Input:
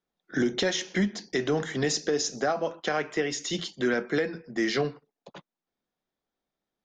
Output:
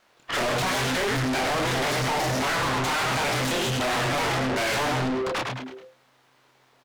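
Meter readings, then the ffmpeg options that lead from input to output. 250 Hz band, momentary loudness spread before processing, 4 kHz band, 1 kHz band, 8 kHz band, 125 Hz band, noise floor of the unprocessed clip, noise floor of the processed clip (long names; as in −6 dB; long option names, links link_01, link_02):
0.0 dB, 4 LU, +5.5 dB, +10.5 dB, +2.5 dB, +7.5 dB, below −85 dBFS, −62 dBFS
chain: -filter_complex "[0:a]acrossover=split=3300[link_01][link_02];[link_02]acompressor=threshold=-48dB:ratio=4:attack=1:release=60[link_03];[link_01][link_03]amix=inputs=2:normalize=0,highpass=frequency=88:width=0.5412,highpass=frequency=88:width=1.3066,lowshelf=frequency=140:gain=9.5,aeval=exprs='0.211*(cos(1*acos(clip(val(0)/0.211,-1,1)))-cos(1*PI/2))+0.0944*(cos(2*acos(clip(val(0)/0.211,-1,1)))-cos(2*PI/2))+0.0596*(cos(4*acos(clip(val(0)/0.211,-1,1)))-cos(4*PI/2))':channel_layout=same,aeval=exprs='abs(val(0))':channel_layout=same,flanger=delay=22.5:depth=7.7:speed=1.2,asplit=2[link_04][link_05];[link_05]asplit=4[link_06][link_07][link_08][link_09];[link_06]adelay=105,afreqshift=-130,volume=-8dB[link_10];[link_07]adelay=210,afreqshift=-260,volume=-16.2dB[link_11];[link_08]adelay=315,afreqshift=-390,volume=-24.4dB[link_12];[link_09]adelay=420,afreqshift=-520,volume=-32.5dB[link_13];[link_10][link_11][link_12][link_13]amix=inputs=4:normalize=0[link_14];[link_04][link_14]amix=inputs=2:normalize=0,asplit=2[link_15][link_16];[link_16]highpass=frequency=720:poles=1,volume=40dB,asoftclip=type=tanh:threshold=-11dB[link_17];[link_15][link_17]amix=inputs=2:normalize=0,lowpass=frequency=2500:poles=1,volume=-6dB,asoftclip=type=tanh:threshold=-26.5dB,volume=2.5dB"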